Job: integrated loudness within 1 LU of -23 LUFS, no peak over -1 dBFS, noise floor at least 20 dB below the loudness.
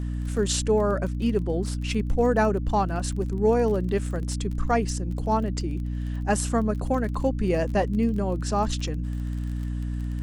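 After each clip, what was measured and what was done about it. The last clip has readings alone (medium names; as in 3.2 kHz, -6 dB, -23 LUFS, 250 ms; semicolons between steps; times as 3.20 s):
tick rate 26 per s; hum 60 Hz; highest harmonic 300 Hz; hum level -26 dBFS; loudness -26.0 LUFS; peak level -10.5 dBFS; loudness target -23.0 LUFS
-> de-click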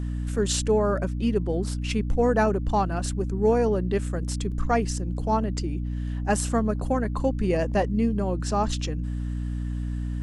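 tick rate 0.098 per s; hum 60 Hz; highest harmonic 300 Hz; hum level -26 dBFS
-> de-hum 60 Hz, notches 5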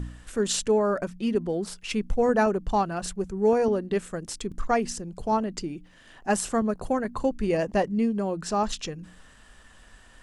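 hum not found; loudness -27.0 LUFS; peak level -12.0 dBFS; loudness target -23.0 LUFS
-> trim +4 dB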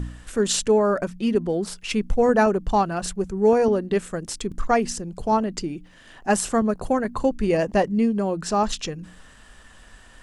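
loudness -23.0 LUFS; peak level -8.0 dBFS; noise floor -49 dBFS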